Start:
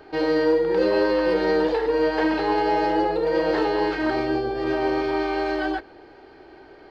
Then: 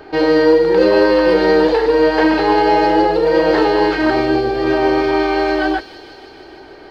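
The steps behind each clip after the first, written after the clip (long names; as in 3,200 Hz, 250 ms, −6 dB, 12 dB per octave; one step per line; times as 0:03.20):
delay with a high-pass on its return 154 ms, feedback 79%, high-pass 3,800 Hz, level −8 dB
level +8.5 dB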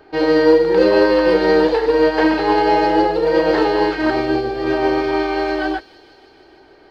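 expander for the loud parts 1.5 to 1, over −27 dBFS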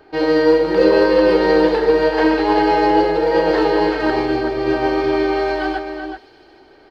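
slap from a distant wall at 65 metres, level −6 dB
level −1 dB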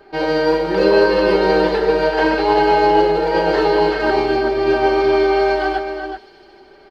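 comb filter 5.1 ms, depth 59%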